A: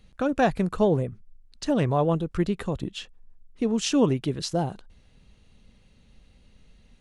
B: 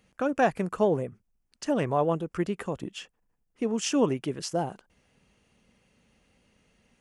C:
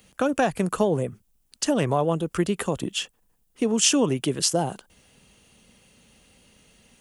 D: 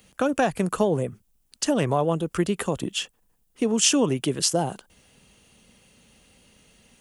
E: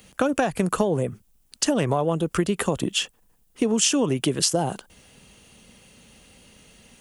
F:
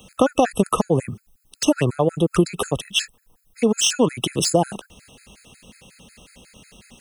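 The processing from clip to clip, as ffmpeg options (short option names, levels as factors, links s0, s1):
-af "highpass=f=310:p=1,equalizer=f=3900:w=3.8:g=-12"
-filter_complex "[0:a]acrossover=split=150[s0][s1];[s1]acompressor=threshold=0.0447:ratio=3[s2];[s0][s2]amix=inputs=2:normalize=0,aexciter=amount=2.6:drive=3:freq=3000,volume=2.24"
-af anull
-af "acompressor=threshold=0.0708:ratio=5,volume=1.78"
-filter_complex "[0:a]acrossover=split=640|3500[s0][s1][s2];[s2]asoftclip=type=tanh:threshold=0.106[s3];[s0][s1][s3]amix=inputs=3:normalize=0,afftfilt=real='re*gt(sin(2*PI*5.5*pts/sr)*(1-2*mod(floor(b*sr/1024/1300),2)),0)':imag='im*gt(sin(2*PI*5.5*pts/sr)*(1-2*mod(floor(b*sr/1024/1300),2)),0)':win_size=1024:overlap=0.75,volume=2.11"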